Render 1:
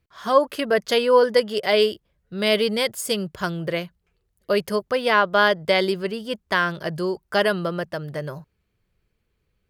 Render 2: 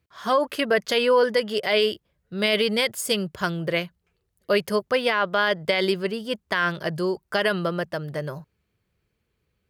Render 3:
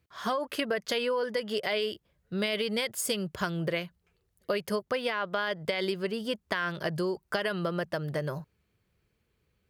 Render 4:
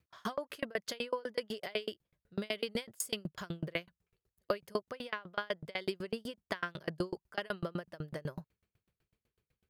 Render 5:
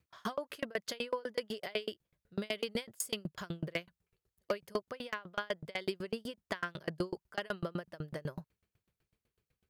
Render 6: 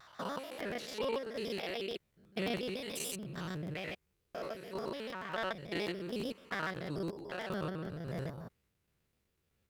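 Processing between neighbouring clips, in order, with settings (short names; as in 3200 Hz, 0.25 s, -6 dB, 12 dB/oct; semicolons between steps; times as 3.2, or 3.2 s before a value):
dynamic EQ 2300 Hz, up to +5 dB, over -32 dBFS, Q 0.95; HPF 58 Hz; limiter -11 dBFS, peak gain reduction 9 dB
compressor, threshold -27 dBFS, peak gain reduction 12 dB
dB-ramp tremolo decaying 8 Hz, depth 34 dB; gain +1 dB
overloaded stage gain 24 dB
stepped spectrum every 0.2 s; crackling interface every 0.11 s, samples 512, repeat, from 0.58; shaped vibrato square 6.9 Hz, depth 160 cents; gain +6 dB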